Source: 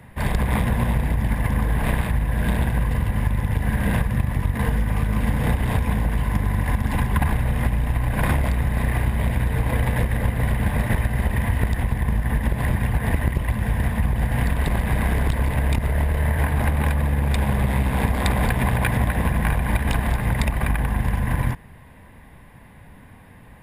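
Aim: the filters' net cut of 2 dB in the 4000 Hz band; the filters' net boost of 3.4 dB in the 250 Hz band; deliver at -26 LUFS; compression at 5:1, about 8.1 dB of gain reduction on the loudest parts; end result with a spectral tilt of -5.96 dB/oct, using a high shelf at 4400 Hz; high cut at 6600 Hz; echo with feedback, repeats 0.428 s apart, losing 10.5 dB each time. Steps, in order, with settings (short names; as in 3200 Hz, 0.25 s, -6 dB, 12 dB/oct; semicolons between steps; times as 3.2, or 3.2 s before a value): LPF 6600 Hz; bell 250 Hz +4.5 dB; bell 4000 Hz -4.5 dB; high shelf 4400 Hz +4.5 dB; compressor 5:1, threshold -24 dBFS; feedback echo 0.428 s, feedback 30%, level -10.5 dB; gain +2.5 dB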